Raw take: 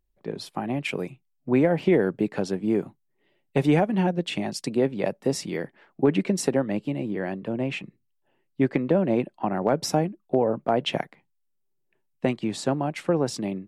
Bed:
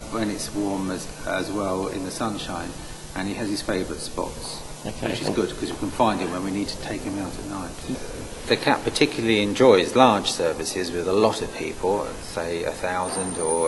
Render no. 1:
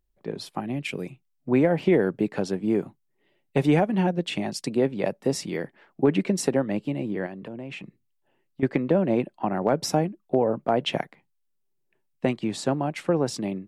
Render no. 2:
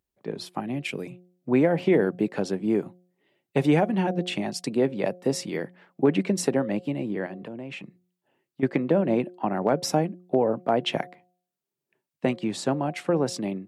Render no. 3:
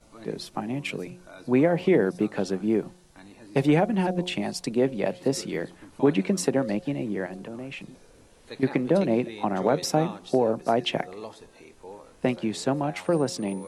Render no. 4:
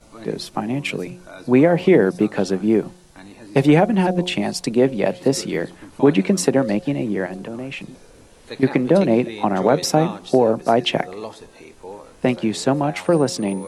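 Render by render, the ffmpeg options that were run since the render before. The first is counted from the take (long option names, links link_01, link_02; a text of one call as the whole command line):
ffmpeg -i in.wav -filter_complex "[0:a]asettb=1/sr,asplit=3[link_01][link_02][link_03];[link_01]atrim=end=0.604[link_04];[link_02]atrim=start=0.6:end=1.06,asetpts=PTS-STARTPTS,afade=type=in:duration=0.004:curve=qsin,afade=type=out:start_time=0.456:duration=0.004:curve=qsin,equalizer=frequency=910:width_type=o:width=1.8:gain=-9[link_05];[link_03]atrim=start=1.056[link_06];[link_04][link_05]acrossfade=duration=0.004:curve1=hsin:curve2=qsin[link_07];[link_07][link_06]acrossfade=duration=0.004:curve1=qsin:curve2=hsin,asettb=1/sr,asplit=3[link_08][link_09][link_10];[link_08]atrim=end=7.264[link_11];[link_09]atrim=start=7.26:end=8.63,asetpts=PTS-STARTPTS,afade=type=in:duration=0.004:curve=qsin,afade=type=out:start_time=1.366:duration=0.004:curve=qsin,acompressor=threshold=-34dB:ratio=4:attack=3.2:release=140:knee=1:detection=peak[link_12];[link_10]atrim=start=8.626[link_13];[link_11][link_12]acrossfade=duration=0.004:curve1=hsin:curve2=qsin[link_14];[link_14][link_13]acrossfade=duration=0.004:curve1=qsin:curve2=hsin" out.wav
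ffmpeg -i in.wav -af "highpass=110,bandreject=frequency=179.7:width_type=h:width=4,bandreject=frequency=359.4:width_type=h:width=4,bandreject=frequency=539.1:width_type=h:width=4,bandreject=frequency=718.8:width_type=h:width=4" out.wav
ffmpeg -i in.wav -i bed.wav -filter_complex "[1:a]volume=-20.5dB[link_01];[0:a][link_01]amix=inputs=2:normalize=0" out.wav
ffmpeg -i in.wav -af "volume=7dB,alimiter=limit=-3dB:level=0:latency=1" out.wav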